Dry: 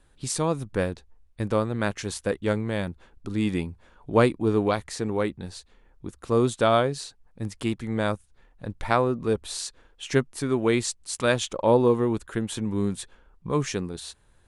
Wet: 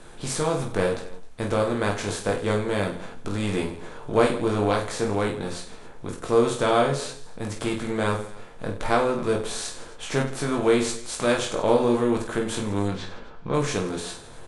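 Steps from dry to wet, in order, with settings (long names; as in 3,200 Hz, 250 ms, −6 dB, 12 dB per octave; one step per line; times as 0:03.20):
compressor on every frequency bin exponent 0.6
0:12.88–0:13.54: low-pass filter 5,200 Hz 24 dB per octave
reverse bouncing-ball delay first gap 20 ms, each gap 1.5×, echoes 5
on a send at −6 dB: convolution reverb, pre-delay 5 ms
on the sum: level −5.5 dB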